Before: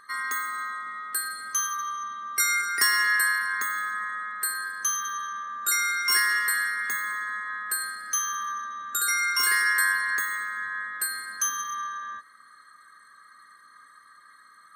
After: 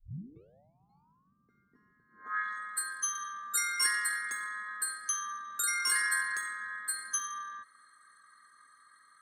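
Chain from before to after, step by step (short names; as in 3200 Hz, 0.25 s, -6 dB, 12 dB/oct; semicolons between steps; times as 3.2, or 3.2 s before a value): tape start at the beginning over 2.14 s; tempo 1.6×; low-pass sweep 160 Hz -> 10000 Hz, 2.07–2.61; gain -7.5 dB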